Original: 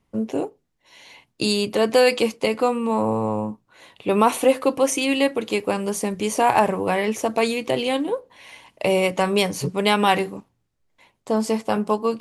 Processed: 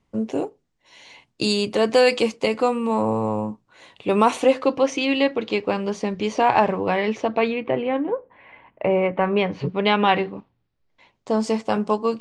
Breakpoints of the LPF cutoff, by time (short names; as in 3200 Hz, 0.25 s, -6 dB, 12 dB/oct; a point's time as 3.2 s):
LPF 24 dB/oct
4.24 s 8400 Hz
4.87 s 5000 Hz
7.11 s 5000 Hz
7.78 s 2100 Hz
9.14 s 2100 Hz
9.75 s 3700 Hz
10.32 s 3700 Hz
11.38 s 7400 Hz